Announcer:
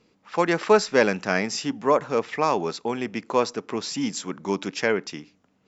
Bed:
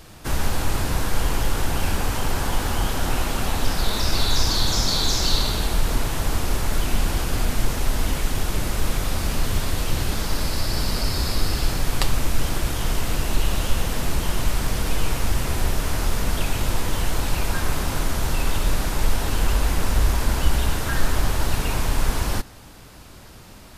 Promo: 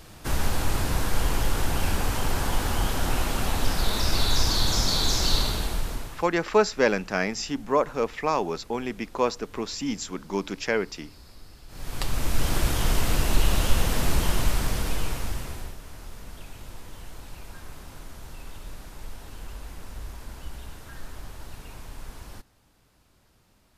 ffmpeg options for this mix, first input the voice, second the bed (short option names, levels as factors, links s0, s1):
-filter_complex "[0:a]adelay=5850,volume=0.75[s0];[1:a]volume=15,afade=t=out:st=5.38:d=0.9:silence=0.0668344,afade=t=in:st=11.68:d=0.92:silence=0.0501187,afade=t=out:st=14.2:d=1.57:silence=0.112202[s1];[s0][s1]amix=inputs=2:normalize=0"